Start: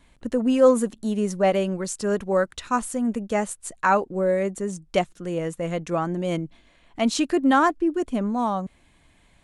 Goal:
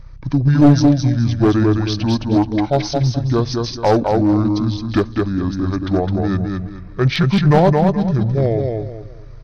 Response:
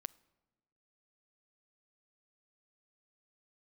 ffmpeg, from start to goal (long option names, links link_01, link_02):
-filter_complex "[0:a]aeval=exprs='val(0)+0.00891*(sin(2*PI*50*n/s)+sin(2*PI*2*50*n/s)/2+sin(2*PI*3*50*n/s)/3+sin(2*PI*4*50*n/s)/4+sin(2*PI*5*50*n/s)/5)':channel_layout=same,aecho=1:1:215|430|645|860:0.631|0.189|0.0568|0.017,asetrate=24750,aresample=44100,atempo=1.7818,asplit=2[link_01][link_02];[1:a]atrim=start_sample=2205[link_03];[link_02][link_03]afir=irnorm=-1:irlink=0,volume=7dB[link_04];[link_01][link_04]amix=inputs=2:normalize=0,aeval=exprs='clip(val(0),-1,0.355)':channel_layout=same,volume=-1dB"